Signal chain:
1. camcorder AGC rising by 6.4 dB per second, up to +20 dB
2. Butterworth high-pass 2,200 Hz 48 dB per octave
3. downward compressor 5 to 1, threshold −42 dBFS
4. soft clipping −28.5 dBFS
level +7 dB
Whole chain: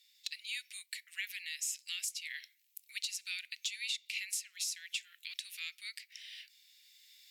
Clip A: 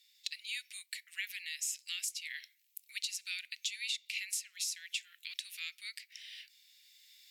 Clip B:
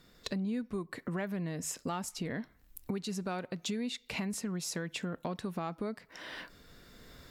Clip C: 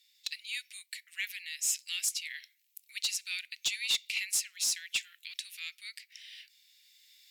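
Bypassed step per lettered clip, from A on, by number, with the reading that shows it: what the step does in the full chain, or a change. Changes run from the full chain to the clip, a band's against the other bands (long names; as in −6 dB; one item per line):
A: 4, distortion level −26 dB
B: 2, change in crest factor −4.5 dB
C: 3, average gain reduction 3.5 dB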